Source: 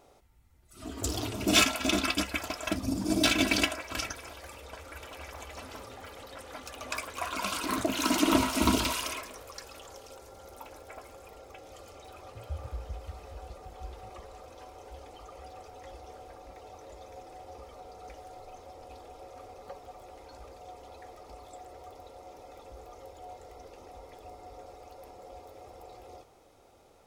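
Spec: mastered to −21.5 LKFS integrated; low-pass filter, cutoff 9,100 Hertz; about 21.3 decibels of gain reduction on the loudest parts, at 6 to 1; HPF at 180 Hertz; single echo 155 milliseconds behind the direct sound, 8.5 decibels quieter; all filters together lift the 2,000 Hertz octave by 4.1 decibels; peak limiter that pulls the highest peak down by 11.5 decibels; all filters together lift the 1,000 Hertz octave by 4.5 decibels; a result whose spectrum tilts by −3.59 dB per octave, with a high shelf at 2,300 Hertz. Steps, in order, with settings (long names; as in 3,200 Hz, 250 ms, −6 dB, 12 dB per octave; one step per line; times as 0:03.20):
high-pass filter 180 Hz
low-pass filter 9,100 Hz
parametric band 1,000 Hz +4.5 dB
parametric band 2,000 Hz +8 dB
high-shelf EQ 2,300 Hz −6 dB
downward compressor 6 to 1, threshold −42 dBFS
brickwall limiter −38.5 dBFS
single-tap delay 155 ms −8.5 dB
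level +26 dB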